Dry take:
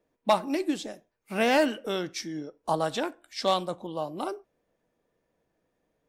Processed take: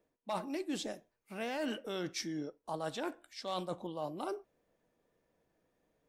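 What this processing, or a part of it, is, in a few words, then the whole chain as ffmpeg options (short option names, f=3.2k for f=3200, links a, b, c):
compression on the reversed sound: -af "areverse,acompressor=threshold=-33dB:ratio=8,areverse,volume=-1.5dB"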